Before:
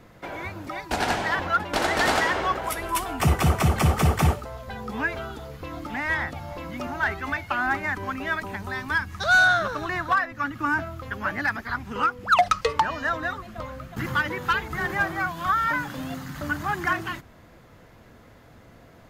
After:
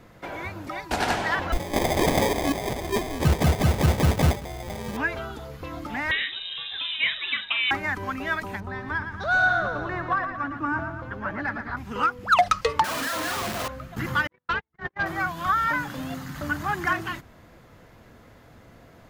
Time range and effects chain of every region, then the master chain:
0:01.52–0:04.97: upward compression, threshold −28 dBFS + sample-rate reduction 1,400 Hz
0:06.11–0:07.71: flutter between parallel walls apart 7.6 metres, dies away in 0.22 s + voice inversion scrambler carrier 3,800 Hz
0:08.60–0:11.77: low-pass filter 1,100 Hz 6 dB per octave + repeating echo 115 ms, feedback 52%, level −8 dB
0:12.84–0:13.68: sign of each sample alone + high-pass filter 160 Hz 6 dB per octave + double-tracking delay 44 ms −3 dB
0:14.27–0:15.06: noise gate −26 dBFS, range −52 dB + hard clipping −19 dBFS + high-frequency loss of the air 180 metres
whole clip: no processing

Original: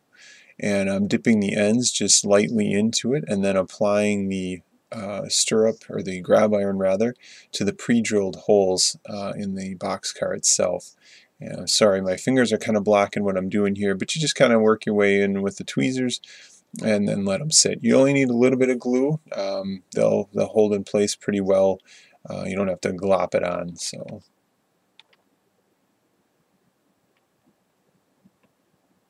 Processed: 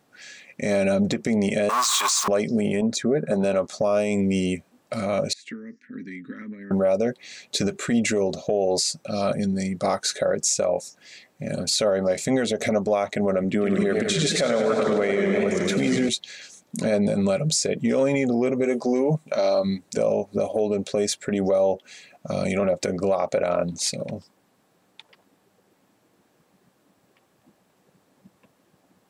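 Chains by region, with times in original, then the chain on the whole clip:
0:01.69–0:02.28: converter with a step at zero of −21 dBFS + high-pass with resonance 1,100 Hz, resonance Q 13
0:02.81–0:03.44: high-pass filter 190 Hz 6 dB per octave + high shelf with overshoot 2,000 Hz −8 dB, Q 1.5
0:05.33–0:06.71: downward compressor 10 to 1, threshold −22 dBFS + pair of resonant band-passes 680 Hz, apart 2.8 octaves
0:13.44–0:16.09: high-pass filter 95 Hz + echo with a time of its own for lows and highs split 410 Hz, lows 234 ms, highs 149 ms, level −11 dB + feedback echo with a swinging delay time 96 ms, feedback 72%, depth 148 cents, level −8 dB
whole clip: dynamic equaliser 690 Hz, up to +6 dB, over −30 dBFS, Q 0.95; downward compressor 4 to 1, threshold −19 dBFS; brickwall limiter −17 dBFS; level +4 dB

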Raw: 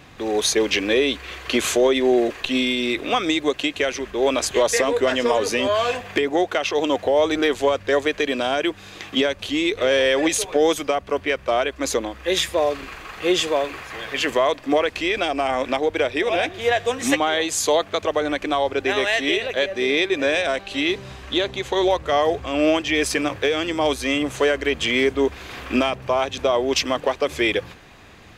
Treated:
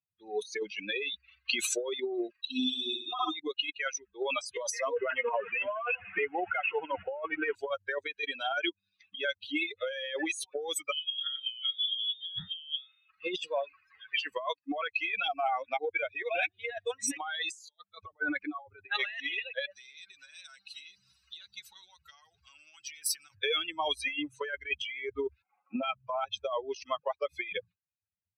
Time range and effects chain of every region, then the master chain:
0:02.41–0:03.35: low-pass filter 9,700 Hz + phaser with its sweep stopped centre 560 Hz, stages 6 + flutter between parallel walls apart 10.7 metres, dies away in 1.5 s
0:04.96–0:07.55: linear delta modulator 16 kbit/s, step −21 dBFS + mains-hum notches 50/100/150/200/250/300 Hz
0:10.92–0:13.10: spectrum smeared in time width 109 ms + voice inversion scrambler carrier 3,700 Hz
0:17.43–0:18.99: compressor whose output falls as the input rises −23 dBFS, ratio −0.5 + multiband upward and downward expander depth 70%
0:19.71–0:23.35: downward compressor, threshold −22 dBFS + every bin compressed towards the loudest bin 2 to 1
0:25.42–0:25.83: variable-slope delta modulation 32 kbit/s + loudspeaker in its box 220–2,300 Hz, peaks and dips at 240 Hz +4 dB, 550 Hz +6 dB, 790 Hz +8 dB, 1,700 Hz −9 dB
whole clip: spectral dynamics exaggerated over time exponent 3; meter weighting curve ITU-R 468; compressor whose output falls as the input rises −35 dBFS, ratio −1

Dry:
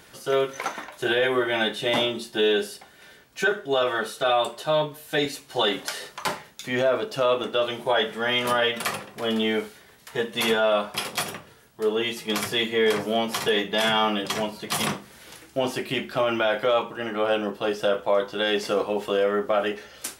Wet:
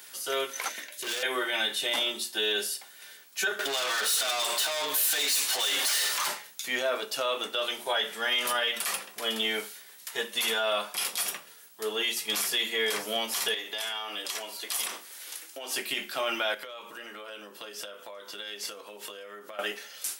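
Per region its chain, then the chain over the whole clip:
0:00.69–0:01.23: flat-topped bell 1,000 Hz −13.5 dB 1.1 octaves + gain into a clipping stage and back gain 28 dB
0:03.59–0:06.27: downward compressor 4 to 1, threshold −33 dBFS + mid-hump overdrive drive 29 dB, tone 7,300 Hz, clips at −17 dBFS
0:13.54–0:15.74: high-pass filter 270 Hz 24 dB per octave + downward compressor 8 to 1, threshold −29 dBFS
0:16.54–0:19.59: notch filter 770 Hz, Q 6.5 + downward compressor 12 to 1, threshold −33 dBFS
whole clip: high-pass filter 160 Hz 24 dB per octave; spectral tilt +4 dB per octave; brickwall limiter −14 dBFS; level −4.5 dB

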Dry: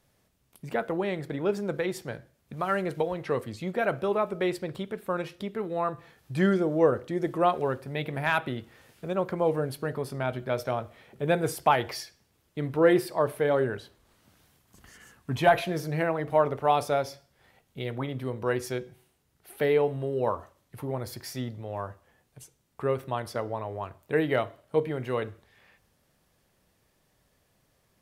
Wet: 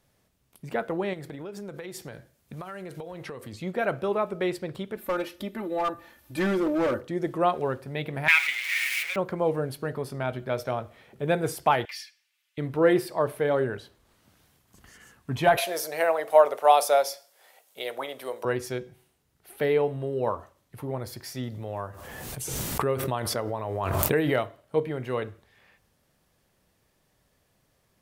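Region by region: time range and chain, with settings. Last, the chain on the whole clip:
0:01.13–0:03.53: high-shelf EQ 4,600 Hz +6.5 dB + downward compressor 12 to 1, threshold −34 dBFS
0:04.96–0:07.01: parametric band 13,000 Hz +10 dB 0.48 octaves + comb filter 3.4 ms, depth 89% + gain into a clipping stage and back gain 21.5 dB
0:08.28–0:09.16: converter with a step at zero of −29.5 dBFS + high-pass with resonance 2,200 Hz, resonance Q 8.8 + comb filter 7.1 ms, depth 53%
0:11.85–0:12.58: high-pass with resonance 2,400 Hz, resonance Q 1.9 + high-shelf EQ 3,600 Hz −6.5 dB + comb filter 3.4 ms, depth 38%
0:15.57–0:18.45: high-pass with resonance 590 Hz, resonance Q 2 + parametric band 13,000 Hz +14.5 dB 2.1 octaves
0:21.43–0:24.47: high-shelf EQ 7,800 Hz +7 dB + background raised ahead of every attack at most 23 dB per second
whole clip: no processing

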